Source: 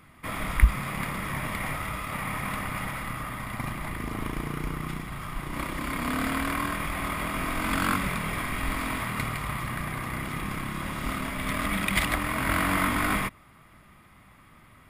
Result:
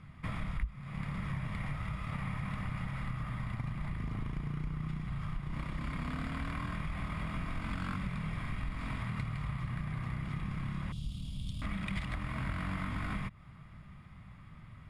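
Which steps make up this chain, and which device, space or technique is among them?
jukebox (LPF 5900 Hz 12 dB/oct; resonant low shelf 220 Hz +10 dB, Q 1.5; compressor 5:1, threshold -29 dBFS, peak gain reduction 25 dB); 10.92–11.62 EQ curve 110 Hz 0 dB, 2000 Hz -30 dB, 3100 Hz +4 dB; gain -5 dB

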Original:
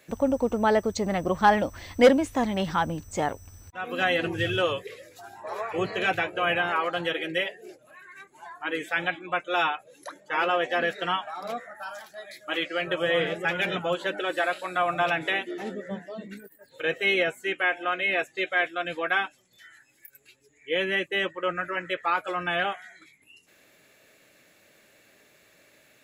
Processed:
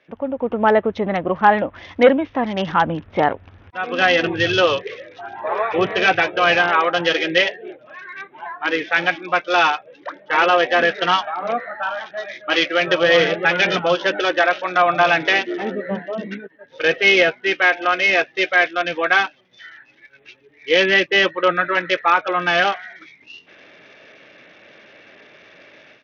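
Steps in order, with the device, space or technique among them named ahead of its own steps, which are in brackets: Bluetooth headset (HPF 200 Hz 6 dB/oct; AGC gain up to 15 dB; downsampling 8000 Hz; gain -1 dB; SBC 64 kbps 48000 Hz)

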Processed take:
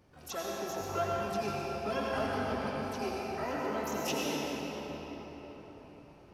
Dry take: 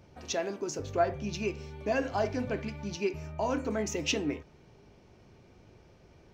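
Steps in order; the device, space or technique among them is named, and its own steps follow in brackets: 2.71–3.3 HPF 280 Hz 24 dB/oct; shimmer-style reverb (harmoniser +12 st -5 dB; reverb RT60 4.9 s, pre-delay 78 ms, DRR -4.5 dB); gain -8.5 dB

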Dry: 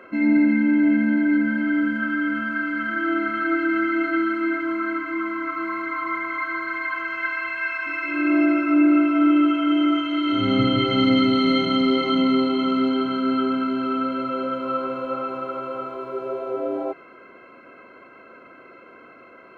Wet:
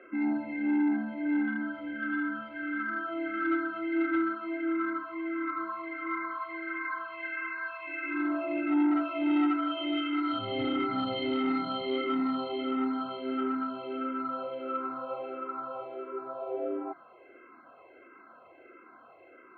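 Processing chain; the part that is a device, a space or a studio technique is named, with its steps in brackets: barber-pole phaser into a guitar amplifier (endless phaser -1.5 Hz; soft clip -14.5 dBFS, distortion -19 dB; speaker cabinet 81–3700 Hz, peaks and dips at 83 Hz +6 dB, 120 Hz -8 dB, 190 Hz -7 dB, 340 Hz +5 dB, 760 Hz +9 dB, 1200 Hz +4 dB); 8.91–10.39 high shelf 2700 Hz +10.5 dB; gain -7.5 dB

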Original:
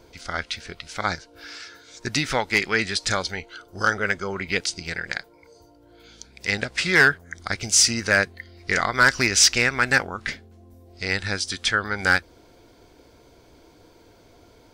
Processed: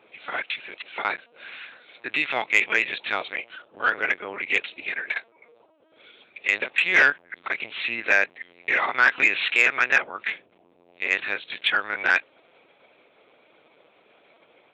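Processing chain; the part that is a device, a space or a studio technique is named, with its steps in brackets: talking toy (LPC vocoder at 8 kHz pitch kept; HPF 420 Hz 12 dB/oct; bell 2500 Hz +9.5 dB 0.44 oct; soft clip -4.5 dBFS, distortion -21 dB); gain -1 dB

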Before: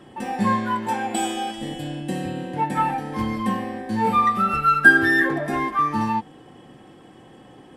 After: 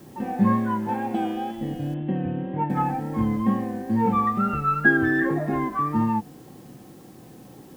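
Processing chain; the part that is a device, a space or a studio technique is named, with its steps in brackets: cassette deck with a dirty head (tape spacing loss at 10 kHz 42 dB; wow and flutter; white noise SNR 31 dB); bell 160 Hz +5 dB 1.7 oct; 1.94–2.7 elliptic low-pass 3300 Hz, stop band 40 dB

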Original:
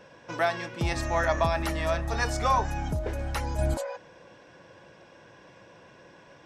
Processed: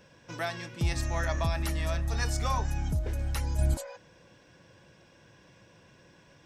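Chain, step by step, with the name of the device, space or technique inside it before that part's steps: smiley-face EQ (low shelf 180 Hz +5.5 dB; bell 730 Hz -7 dB 2.7 oct; high shelf 6900 Hz +6.5 dB); gain -2.5 dB

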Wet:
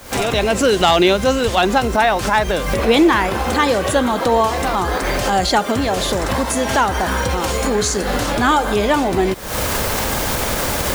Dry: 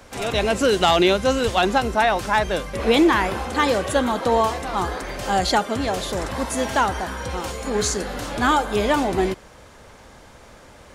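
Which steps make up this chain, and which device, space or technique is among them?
cheap recorder with automatic gain (white noise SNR 28 dB; recorder AGC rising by 79 dB/s); gain +3.5 dB

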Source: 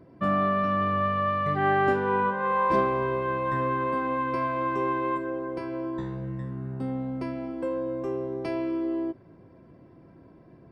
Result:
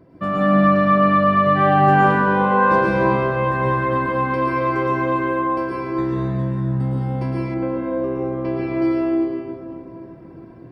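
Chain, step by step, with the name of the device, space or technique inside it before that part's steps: stairwell (reverb RT60 2.7 s, pre-delay 0.105 s, DRR -6 dB); 7.54–8.82 air absorption 250 m; gain +2 dB

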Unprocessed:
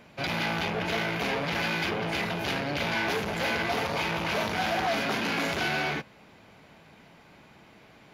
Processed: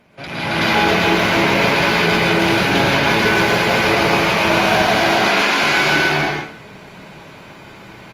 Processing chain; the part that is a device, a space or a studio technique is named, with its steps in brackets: 5.01–5.62 weighting filter A; loudspeakers at several distances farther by 55 m -4 dB, 93 m 0 dB; speakerphone in a meeting room (reverb RT60 0.55 s, pre-delay 0.105 s, DRR -1.5 dB; AGC gain up to 8.5 dB; Opus 32 kbps 48000 Hz)

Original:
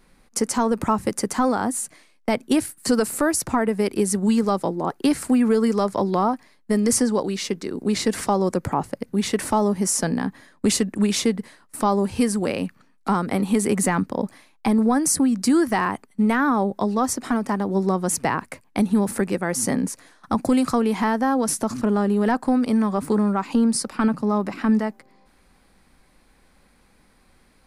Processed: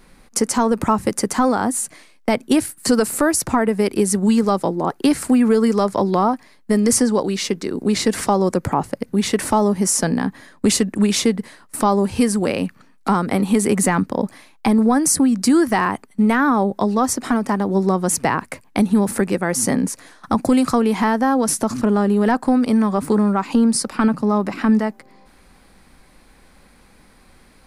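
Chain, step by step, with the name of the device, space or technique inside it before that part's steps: parallel compression (in parallel at -2.5 dB: compressor, threshold -33 dBFS, peak gain reduction 17 dB); on the sum: gain +2.5 dB

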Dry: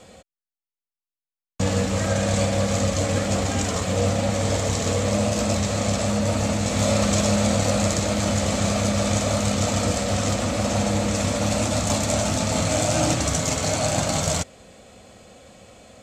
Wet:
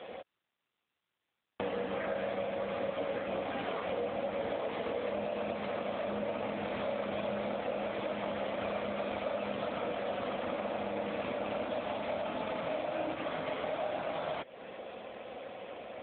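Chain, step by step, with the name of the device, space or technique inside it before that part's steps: voicemail (BPF 340–3200 Hz; compressor 10:1, threshold -38 dBFS, peak gain reduction 17.5 dB; gain +6.5 dB; AMR-NB 7.95 kbps 8000 Hz)

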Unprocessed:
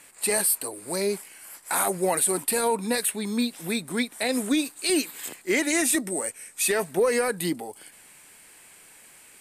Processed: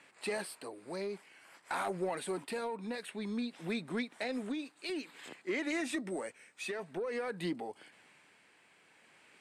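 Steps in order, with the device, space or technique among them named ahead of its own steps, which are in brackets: AM radio (BPF 120–3600 Hz; compressor 10:1, threshold -25 dBFS, peak gain reduction 8 dB; soft clip -20.5 dBFS, distortion -22 dB; tremolo 0.52 Hz, depth 39%); gain -4.5 dB

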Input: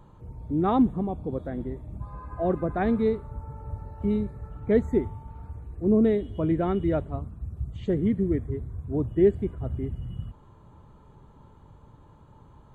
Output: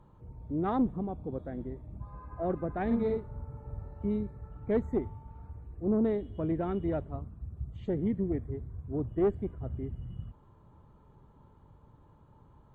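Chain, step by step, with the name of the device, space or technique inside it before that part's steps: 2.86–4 doubler 47 ms -2.5 dB; tube preamp driven hard (tube stage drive 14 dB, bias 0.4; high shelf 3300 Hz -8.5 dB); gain -4.5 dB

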